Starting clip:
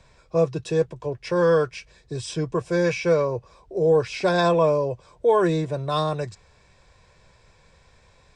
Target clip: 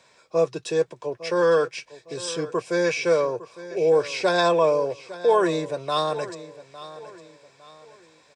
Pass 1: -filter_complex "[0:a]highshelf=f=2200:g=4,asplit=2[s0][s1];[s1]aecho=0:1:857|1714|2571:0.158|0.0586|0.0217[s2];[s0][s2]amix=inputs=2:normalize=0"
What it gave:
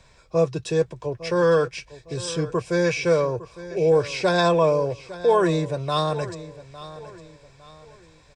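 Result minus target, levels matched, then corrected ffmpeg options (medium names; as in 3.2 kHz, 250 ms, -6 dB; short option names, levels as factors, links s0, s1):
250 Hz band +2.5 dB
-filter_complex "[0:a]highpass=270,highshelf=f=2200:g=4,asplit=2[s0][s1];[s1]aecho=0:1:857|1714|2571:0.158|0.0586|0.0217[s2];[s0][s2]amix=inputs=2:normalize=0"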